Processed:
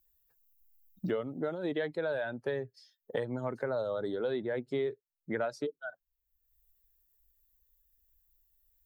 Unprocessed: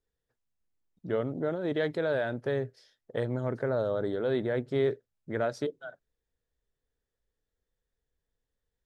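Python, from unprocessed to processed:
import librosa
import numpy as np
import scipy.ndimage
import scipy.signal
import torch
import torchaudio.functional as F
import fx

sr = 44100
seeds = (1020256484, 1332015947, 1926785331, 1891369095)

y = fx.bin_expand(x, sr, power=1.5)
y = fx.low_shelf(y, sr, hz=170.0, db=-11.5)
y = fx.band_squash(y, sr, depth_pct=100)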